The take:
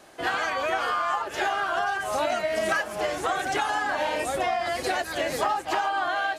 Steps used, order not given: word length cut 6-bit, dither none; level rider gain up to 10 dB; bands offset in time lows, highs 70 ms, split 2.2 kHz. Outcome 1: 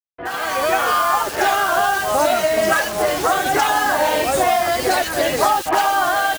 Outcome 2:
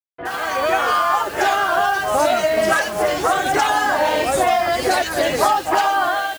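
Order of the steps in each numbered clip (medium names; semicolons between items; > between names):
word length cut > bands offset in time > level rider; level rider > word length cut > bands offset in time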